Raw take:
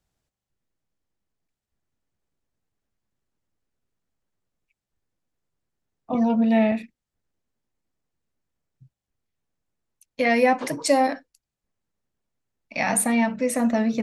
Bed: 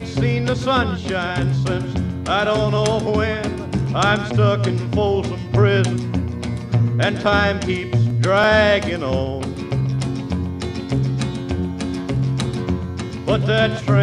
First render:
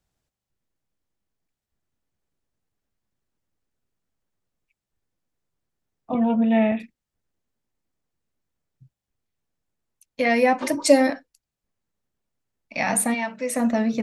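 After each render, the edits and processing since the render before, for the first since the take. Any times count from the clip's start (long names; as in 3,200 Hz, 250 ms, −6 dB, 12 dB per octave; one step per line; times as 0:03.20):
0:06.14–0:06.80: bad sample-rate conversion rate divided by 6×, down none, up filtered
0:10.62–0:11.10: comb filter 3.3 ms, depth 98%
0:13.13–0:13.55: high-pass filter 1,000 Hz → 420 Hz 6 dB per octave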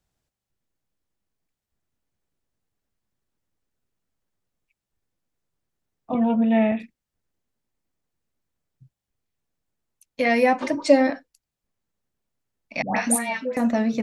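0:06.39–0:06.82: high-frequency loss of the air 68 metres
0:10.66–0:11.14: high-frequency loss of the air 120 metres
0:12.82–0:13.57: all-pass dispersion highs, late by 147 ms, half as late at 860 Hz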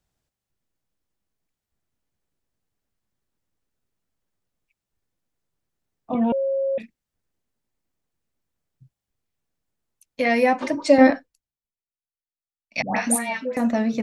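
0:06.32–0:06.78: beep over 543 Hz −20 dBFS
0:10.98–0:12.81: multiband upward and downward expander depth 100%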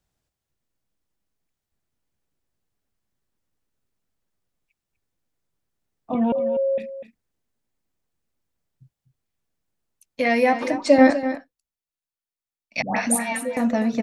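single-tap delay 247 ms −11.5 dB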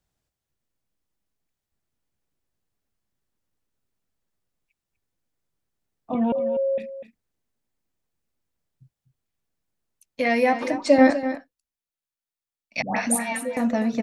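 level −1.5 dB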